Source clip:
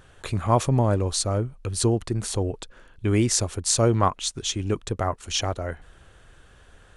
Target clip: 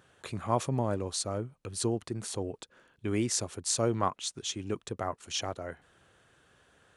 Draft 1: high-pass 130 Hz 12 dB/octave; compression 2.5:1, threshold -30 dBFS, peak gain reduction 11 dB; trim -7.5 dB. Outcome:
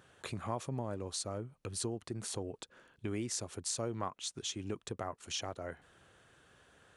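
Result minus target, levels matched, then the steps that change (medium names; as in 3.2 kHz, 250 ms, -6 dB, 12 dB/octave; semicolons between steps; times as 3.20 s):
compression: peak gain reduction +11 dB
remove: compression 2.5:1, threshold -30 dBFS, peak gain reduction 11 dB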